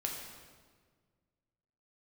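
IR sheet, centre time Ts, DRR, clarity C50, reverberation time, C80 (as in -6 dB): 60 ms, -0.5 dB, 3.0 dB, 1.6 s, 4.5 dB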